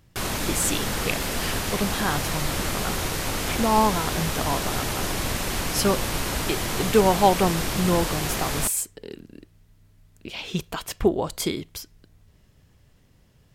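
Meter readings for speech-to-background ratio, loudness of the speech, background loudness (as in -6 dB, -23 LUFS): 1.0 dB, -26.0 LUFS, -27.0 LUFS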